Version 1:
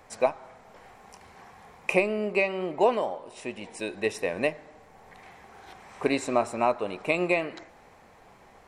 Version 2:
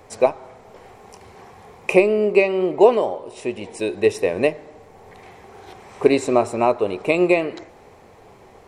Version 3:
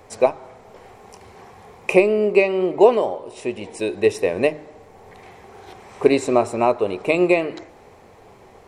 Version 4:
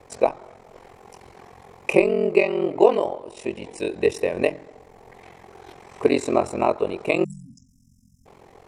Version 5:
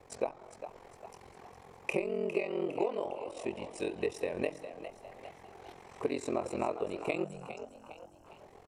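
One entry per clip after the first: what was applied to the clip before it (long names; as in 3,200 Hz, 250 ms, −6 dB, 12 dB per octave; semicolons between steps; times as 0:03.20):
graphic EQ with 15 bands 100 Hz +7 dB, 400 Hz +8 dB, 1,600 Hz −4 dB; level +5 dB
hum removal 152 Hz, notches 2
ring modulation 22 Hz; time-frequency box erased 0:07.24–0:08.26, 270–5,000 Hz
downward compressor 4 to 1, threshold −22 dBFS, peak gain reduction 11.5 dB; on a send: echo with shifted repeats 406 ms, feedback 47%, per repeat +78 Hz, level −11 dB; on the sum: level −7.5 dB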